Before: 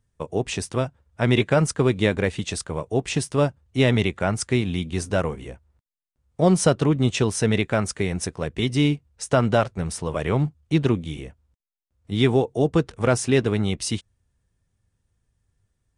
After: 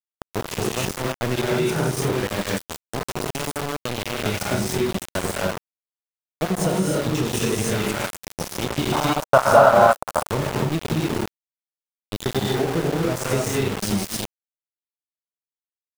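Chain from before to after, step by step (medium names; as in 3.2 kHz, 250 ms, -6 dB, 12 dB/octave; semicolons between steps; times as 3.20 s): random holes in the spectrogram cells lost 30%; reverb removal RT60 0.54 s; on a send: early reflections 30 ms -10.5 dB, 48 ms -14 dB, 78 ms -15 dB; on the sum: gated-style reverb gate 330 ms rising, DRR -5 dB; 2.76–4.26 s: level held to a coarse grid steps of 22 dB; dynamic bell 2.2 kHz, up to -4 dB, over -41 dBFS, Q 3.8; small samples zeroed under -18 dBFS; compression 4:1, threshold -18 dBFS, peak gain reduction 9.5 dB; 8.92–10.27 s: high-order bell 900 Hz +13 dB; trim -1 dB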